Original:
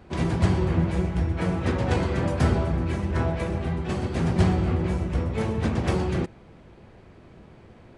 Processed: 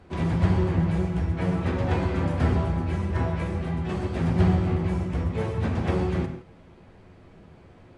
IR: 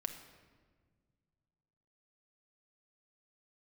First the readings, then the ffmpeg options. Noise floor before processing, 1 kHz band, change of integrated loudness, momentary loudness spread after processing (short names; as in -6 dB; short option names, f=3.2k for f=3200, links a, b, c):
-50 dBFS, -1.0 dB, -0.5 dB, 6 LU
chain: -filter_complex "[0:a]acrossover=split=3600[a][b];[b]acompressor=threshold=-51dB:ratio=4:attack=1:release=60[c];[a][c]amix=inputs=2:normalize=0[d];[1:a]atrim=start_sample=2205,atrim=end_sample=3969,asetrate=22050,aresample=44100[e];[d][e]afir=irnorm=-1:irlink=0,volume=-4.5dB"